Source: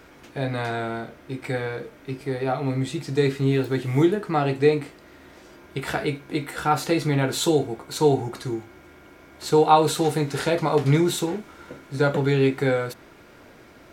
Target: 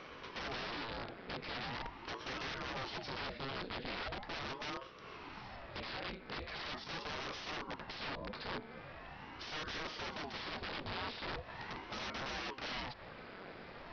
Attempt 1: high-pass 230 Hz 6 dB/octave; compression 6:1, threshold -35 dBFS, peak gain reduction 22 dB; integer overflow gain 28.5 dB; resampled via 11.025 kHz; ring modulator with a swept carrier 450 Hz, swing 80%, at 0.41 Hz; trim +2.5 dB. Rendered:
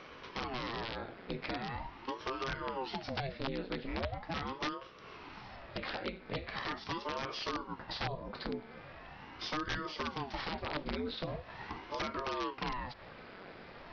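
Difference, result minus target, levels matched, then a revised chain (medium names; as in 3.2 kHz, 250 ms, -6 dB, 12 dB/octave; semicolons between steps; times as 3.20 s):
integer overflow: distortion -18 dB
high-pass 230 Hz 6 dB/octave; compression 6:1, threshold -35 dBFS, peak gain reduction 22 dB; integer overflow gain 35.5 dB; resampled via 11.025 kHz; ring modulator with a swept carrier 450 Hz, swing 80%, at 0.41 Hz; trim +2.5 dB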